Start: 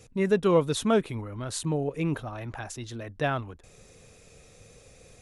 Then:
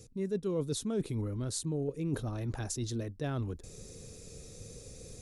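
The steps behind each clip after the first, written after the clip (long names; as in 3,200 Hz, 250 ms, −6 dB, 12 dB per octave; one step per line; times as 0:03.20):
flat-topped bell 1,400 Hz −11.5 dB 2.7 octaves
reversed playback
downward compressor 5 to 1, threshold −38 dBFS, peak gain reduction 17.5 dB
reversed playback
level +6 dB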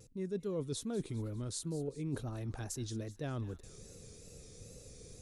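delay with a high-pass on its return 201 ms, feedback 51%, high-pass 1,400 Hz, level −15 dB
tape wow and flutter 78 cents
level −4.5 dB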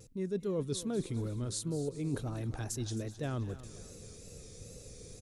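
repeating echo 264 ms, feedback 41%, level −15.5 dB
level +3 dB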